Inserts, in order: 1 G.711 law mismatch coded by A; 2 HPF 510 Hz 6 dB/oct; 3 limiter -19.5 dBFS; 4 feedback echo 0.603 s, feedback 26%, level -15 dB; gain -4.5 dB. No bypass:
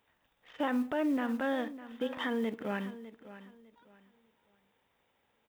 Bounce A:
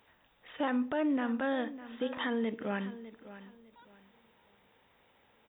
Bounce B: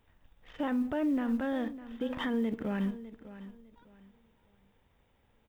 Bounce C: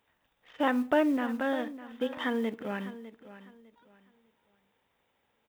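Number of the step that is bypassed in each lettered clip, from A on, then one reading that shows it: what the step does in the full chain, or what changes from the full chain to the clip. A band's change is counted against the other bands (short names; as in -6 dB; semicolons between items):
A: 1, distortion -29 dB; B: 2, 250 Hz band +5.0 dB; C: 3, crest factor change +6.5 dB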